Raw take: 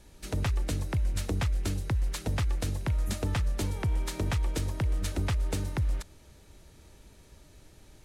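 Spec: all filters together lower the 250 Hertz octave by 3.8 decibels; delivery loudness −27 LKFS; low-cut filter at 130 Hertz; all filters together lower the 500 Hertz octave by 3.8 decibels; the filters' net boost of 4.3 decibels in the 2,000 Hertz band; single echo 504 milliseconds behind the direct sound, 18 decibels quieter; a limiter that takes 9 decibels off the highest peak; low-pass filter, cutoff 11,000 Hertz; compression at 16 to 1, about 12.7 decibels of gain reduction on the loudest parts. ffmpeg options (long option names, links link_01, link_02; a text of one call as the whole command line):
ffmpeg -i in.wav -af "highpass=130,lowpass=11000,equalizer=frequency=250:width_type=o:gain=-3.5,equalizer=frequency=500:width_type=o:gain=-4,equalizer=frequency=2000:width_type=o:gain=5.5,acompressor=threshold=-43dB:ratio=16,alimiter=level_in=11.5dB:limit=-24dB:level=0:latency=1,volume=-11.5dB,aecho=1:1:504:0.126,volume=23.5dB" out.wav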